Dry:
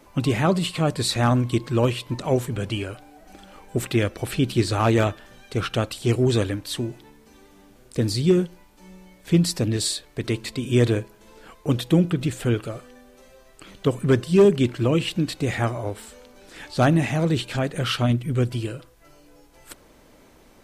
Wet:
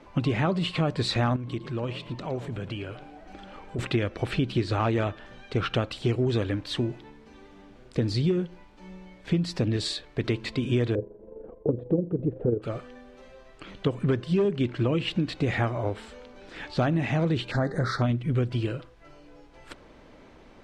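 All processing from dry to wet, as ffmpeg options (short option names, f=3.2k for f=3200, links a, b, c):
-filter_complex "[0:a]asettb=1/sr,asplit=3[a][b][c];[a]atrim=end=1.364[d];[b]atrim=start=1.36:end=3.79,asetpts=PTS-STARTPTS,afade=t=in:d=0.004:c=qsin,afade=t=out:st=2.426:d=0.004:c=qsin,acompressor=threshold=-38dB:ratio=2:attack=3.2:release=140:knee=1:detection=peak,asplit=4[e][f][g][h];[f]adelay=113,afreqshift=43,volume=-14dB[i];[g]adelay=226,afreqshift=86,volume=-23.6dB[j];[h]adelay=339,afreqshift=129,volume=-33.3dB[k];[e][i][j][k]amix=inputs=4:normalize=0,atrim=end_sample=107163[l];[c]atrim=start=3.786[m];[d][l]acrossfade=d=0.004:c1=hsin:c2=qsin[n];[n][m]acrossfade=d=0.004:c1=qsin:c2=hsin,asettb=1/sr,asplit=3[o][p][q];[o]atrim=end=10.954[r];[p]atrim=start=10.95:end=12.62,asetpts=PTS-STARTPTS,afade=t=in:d=0.004:c=qsin,afade=t=out:st=1.666:d=0.004:c=qsin,lowpass=f=480:t=q:w=3.3,tremolo=f=24:d=0.519[s];[q]atrim=start=12.616[t];[r][s]acrossfade=d=0.004:c1=hsin:c2=qsin[u];[u][t]acrossfade=d=0.004:c1=qsin:c2=hsin,asettb=1/sr,asplit=3[v][w][x];[v]atrim=end=17.514[y];[w]atrim=start=17.51:end=18.02,asetpts=PTS-STARTPTS,afade=t=in:d=0.004:c=qsin,afade=t=out:st=0.506:d=0.004:c=qsin,asuperstop=centerf=2800:order=8:qfactor=1.5,bandreject=f=199.5:t=h:w=4,bandreject=f=399:t=h:w=4,bandreject=f=598.5:t=h:w=4,bandreject=f=798:t=h:w=4,bandreject=f=997.5:t=h:w=4,bandreject=f=1.197k:t=h:w=4,bandreject=f=1.3965k:t=h:w=4,bandreject=f=1.596k:t=h:w=4,bandreject=f=1.7955k:t=h:w=4,bandreject=f=1.995k:t=h:w=4,bandreject=f=2.1945k:t=h:w=4,bandreject=f=2.394k:t=h:w=4,bandreject=f=2.5935k:t=h:w=4,bandreject=f=2.793k:t=h:w=4,bandreject=f=2.9925k:t=h:w=4,bandreject=f=3.192k:t=h:w=4,bandreject=f=3.3915k:t=h:w=4,bandreject=f=3.591k:t=h:w=4,bandreject=f=3.7905k:t=h:w=4,bandreject=f=3.99k:t=h:w=4,bandreject=f=4.1895k:t=h:w=4,bandreject=f=4.389k:t=h:w=4,bandreject=f=4.5885k:t=h:w=4,bandreject=f=4.788k:t=h:w=4,bandreject=f=4.9875k:t=h:w=4,bandreject=f=5.187k:t=h:w=4,bandreject=f=5.3865k:t=h:w=4,bandreject=f=5.586k:t=h:w=4,bandreject=f=5.7855k:t=h:w=4,bandreject=f=5.985k:t=h:w=4,bandreject=f=6.1845k:t=h:w=4,bandreject=f=6.384k:t=h:w=4[z];[x]atrim=start=18.016[aa];[y][z]acrossfade=d=0.004:c1=hsin:c2=qsin[ab];[ab][aa]acrossfade=d=0.004:c1=qsin:c2=hsin,lowpass=3.7k,acompressor=threshold=-23dB:ratio=6,volume=1.5dB"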